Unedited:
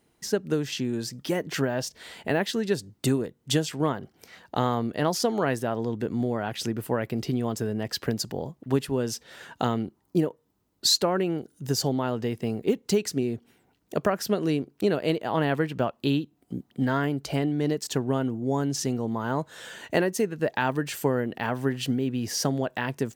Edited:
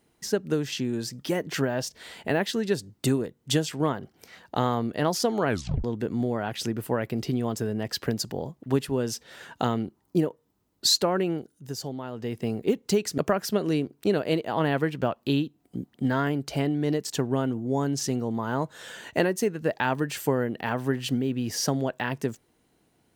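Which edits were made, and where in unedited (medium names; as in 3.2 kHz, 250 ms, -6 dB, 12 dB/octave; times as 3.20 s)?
5.48 s: tape stop 0.36 s
11.32–12.42 s: dip -8.5 dB, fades 0.30 s
13.18–13.95 s: delete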